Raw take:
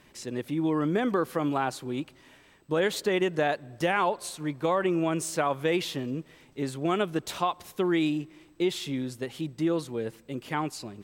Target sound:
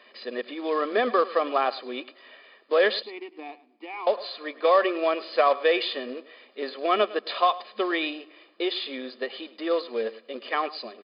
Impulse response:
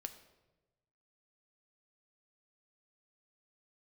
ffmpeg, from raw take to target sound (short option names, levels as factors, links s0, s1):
-filter_complex "[0:a]asettb=1/sr,asplit=3[s0][s1][s2];[s0]atrim=end=3.024[s3];[s1]atrim=start=3.02:end=4.07,asetpts=PTS-STARTPTS,afade=t=in:d=0.004:c=qsin,afade=t=out:st=1.046:d=0.004:c=qsin,asplit=3[s4][s5][s6];[s4]bandpass=f=300:t=q:w=8,volume=1[s7];[s5]bandpass=f=870:t=q:w=8,volume=0.501[s8];[s6]bandpass=f=2240:t=q:w=8,volume=0.355[s9];[s7][s8][s9]amix=inputs=3:normalize=0[s10];[s2]atrim=start=4.066[s11];[s3][s10]acrossfade=d=0.004:c1=hsin:c2=qsin[s12];[s12][s11]acrossfade=d=0.004:c1=qsin:c2=hsin,acrossover=split=350[s13][s14];[s14]acontrast=62[s15];[s13][s15]amix=inputs=2:normalize=0,aecho=1:1:1.7:0.66,aecho=1:1:105:0.126,acrusher=bits=4:mode=log:mix=0:aa=0.000001,afftfilt=real='re*between(b*sr/4096,210,5100)':imag='im*between(b*sr/4096,210,5100)':win_size=4096:overlap=0.75,volume=0.794"